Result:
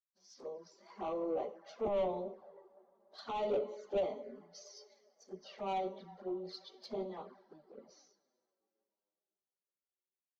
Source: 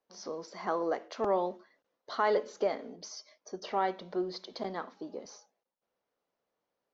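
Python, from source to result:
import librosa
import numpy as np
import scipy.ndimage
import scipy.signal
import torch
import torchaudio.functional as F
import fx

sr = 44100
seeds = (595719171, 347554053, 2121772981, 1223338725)

y = fx.dynamic_eq(x, sr, hz=530.0, q=1.7, threshold_db=-43.0, ratio=4.0, max_db=4)
y = y + 0.39 * np.pad(y, (int(5.1 * sr / 1000.0), 0))[:len(y)]
y = y + 10.0 ** (-23.5 / 20.0) * np.pad(y, (int(224 * sr / 1000.0), 0))[:len(y)]
y = fx.rev_schroeder(y, sr, rt60_s=3.8, comb_ms=31, drr_db=15.0)
y = fx.stretch_vocoder_free(y, sr, factor=1.5)
y = 10.0 ** (-28.5 / 20.0) * np.tanh(y / 10.0 ** (-28.5 / 20.0))
y = fx.env_flanger(y, sr, rest_ms=11.0, full_db=-35.5)
y = fx.high_shelf(y, sr, hz=4200.0, db=-7.0)
y = fx.band_widen(y, sr, depth_pct=70)
y = y * librosa.db_to_amplitude(-2.0)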